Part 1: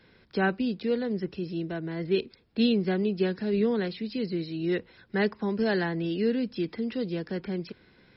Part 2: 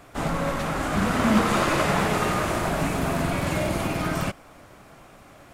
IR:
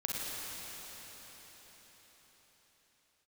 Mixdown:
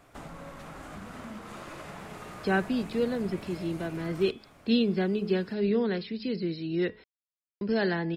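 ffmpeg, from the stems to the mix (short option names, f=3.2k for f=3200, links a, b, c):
-filter_complex "[0:a]bandreject=f=213.2:t=h:w=4,bandreject=f=426.4:t=h:w=4,bandreject=f=639.6:t=h:w=4,bandreject=f=852.8:t=h:w=4,bandreject=f=1.066k:t=h:w=4,bandreject=f=1.2792k:t=h:w=4,bandreject=f=1.4924k:t=h:w=4,bandreject=f=1.7056k:t=h:w=4,bandreject=f=1.9188k:t=h:w=4,bandreject=f=2.132k:t=h:w=4,bandreject=f=2.3452k:t=h:w=4,bandreject=f=2.5584k:t=h:w=4,bandreject=f=2.7716k:t=h:w=4,bandreject=f=2.9848k:t=h:w=4,bandreject=f=3.198k:t=h:w=4,bandreject=f=3.4112k:t=h:w=4,bandreject=f=3.6244k:t=h:w=4,adelay=2100,volume=-0.5dB,asplit=3[a][b][c];[a]atrim=end=7.04,asetpts=PTS-STARTPTS,afade=t=out:st=7.036:d=0.004:c=hsin[d];[b]atrim=start=7.04:end=7.61,asetpts=PTS-STARTPTS,volume=0[e];[c]atrim=start=7.61,asetpts=PTS-STARTPTS,afade=t=in:d=0.004:c=hsin[f];[d][e][f]concat=n=3:v=0:a=1[g];[1:a]acompressor=threshold=-33dB:ratio=4,volume=-9.5dB,asplit=2[h][i];[i]volume=-21.5dB[j];[2:a]atrim=start_sample=2205[k];[j][k]afir=irnorm=-1:irlink=0[l];[g][h][l]amix=inputs=3:normalize=0"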